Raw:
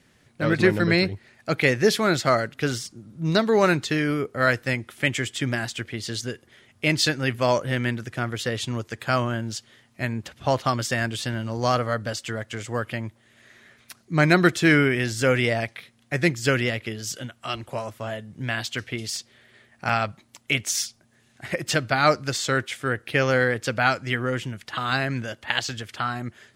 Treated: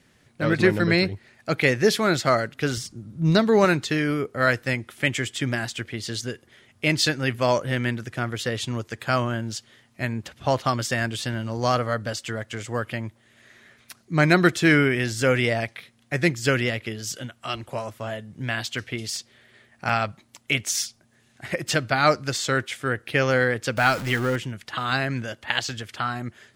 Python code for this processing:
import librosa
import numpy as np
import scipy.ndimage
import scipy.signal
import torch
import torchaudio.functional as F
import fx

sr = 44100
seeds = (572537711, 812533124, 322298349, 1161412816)

y = fx.low_shelf(x, sr, hz=140.0, db=11.0, at=(2.77, 3.65))
y = fx.zero_step(y, sr, step_db=-29.0, at=(23.77, 24.36))